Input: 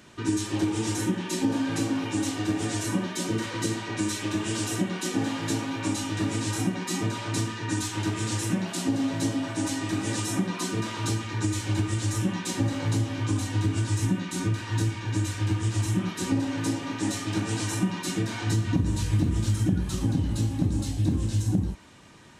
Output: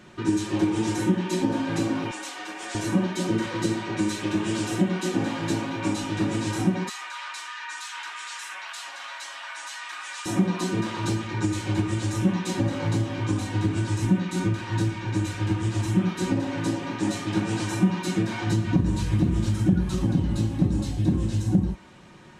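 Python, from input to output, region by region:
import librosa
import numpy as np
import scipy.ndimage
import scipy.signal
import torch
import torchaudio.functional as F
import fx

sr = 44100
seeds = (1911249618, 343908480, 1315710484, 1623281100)

y = fx.chain(x, sr, fx.highpass(hz=850.0, slope=12),
    fx.notch(hz=3900.0, q=27.0), at=(2.11, 2.75))
y = fx.chain(y, sr, fx.highpass(hz=1100.0, slope=24),
    fx.high_shelf(hz=4100.0, db=-5.5),
    fx.env_flatten(amount_pct=50), at=(6.89, 10.26))
y = fx.high_shelf(y, sr, hz=4100.0, db=-10.0)
y = y + 0.4 * np.pad(y, (int(5.5 * sr / 1000.0), 0))[:len(y)]
y = y * 10.0 ** (3.0 / 20.0)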